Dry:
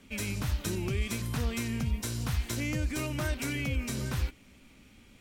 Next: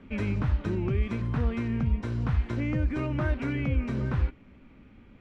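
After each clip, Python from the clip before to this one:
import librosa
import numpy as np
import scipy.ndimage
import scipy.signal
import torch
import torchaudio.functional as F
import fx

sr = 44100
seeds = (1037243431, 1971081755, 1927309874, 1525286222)

y = scipy.signal.sosfilt(scipy.signal.butter(2, 1500.0, 'lowpass', fs=sr, output='sos'), x)
y = fx.peak_eq(y, sr, hz=700.0, db=-2.5, octaves=0.77)
y = fx.rider(y, sr, range_db=10, speed_s=0.5)
y = F.gain(torch.from_numpy(y), 5.0).numpy()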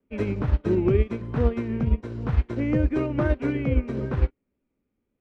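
y = fx.peak_eq(x, sr, hz=430.0, db=10.0, octaves=1.4)
y = fx.wow_flutter(y, sr, seeds[0], rate_hz=2.1, depth_cents=28.0)
y = fx.upward_expand(y, sr, threshold_db=-43.0, expansion=2.5)
y = F.gain(torch.from_numpy(y), 6.0).numpy()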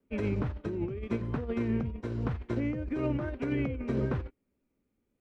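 y = fx.over_compress(x, sr, threshold_db=-27.0, ratio=-1.0)
y = F.gain(torch.from_numpy(y), -4.5).numpy()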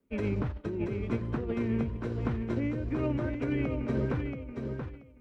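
y = fx.echo_feedback(x, sr, ms=680, feedback_pct=18, wet_db=-6.0)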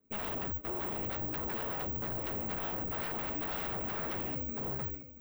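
y = scipy.ndimage.median_filter(x, 9, mode='constant')
y = 10.0 ** (-35.0 / 20.0) * (np.abs((y / 10.0 ** (-35.0 / 20.0) + 3.0) % 4.0 - 2.0) - 1.0)
y = (np.kron(y[::2], np.eye(2)[0]) * 2)[:len(y)]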